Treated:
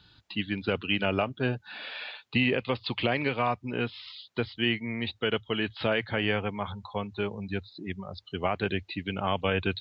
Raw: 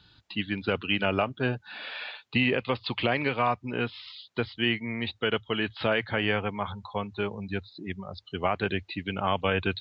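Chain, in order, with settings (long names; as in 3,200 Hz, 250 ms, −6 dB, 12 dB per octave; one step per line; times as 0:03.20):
dynamic equaliser 1,200 Hz, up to −3 dB, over −42 dBFS, Q 0.9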